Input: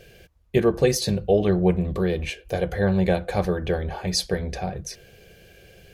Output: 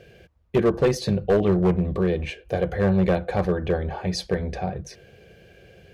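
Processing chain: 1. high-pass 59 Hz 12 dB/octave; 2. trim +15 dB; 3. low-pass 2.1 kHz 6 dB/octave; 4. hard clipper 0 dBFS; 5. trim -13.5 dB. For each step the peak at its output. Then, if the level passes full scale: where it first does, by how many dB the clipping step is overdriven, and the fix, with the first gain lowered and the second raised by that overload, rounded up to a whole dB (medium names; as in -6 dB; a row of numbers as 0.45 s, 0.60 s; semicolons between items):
-6.0 dBFS, +9.0 dBFS, +8.5 dBFS, 0.0 dBFS, -13.5 dBFS; step 2, 8.5 dB; step 2 +6 dB, step 5 -4.5 dB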